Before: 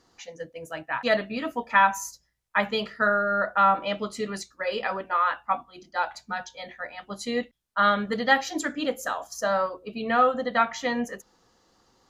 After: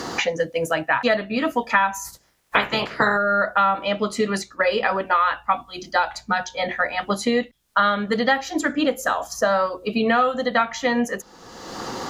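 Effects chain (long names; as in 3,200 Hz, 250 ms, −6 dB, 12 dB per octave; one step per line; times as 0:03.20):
0:02.04–0:03.16: ceiling on every frequency bin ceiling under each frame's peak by 23 dB
multiband upward and downward compressor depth 100%
level +4.5 dB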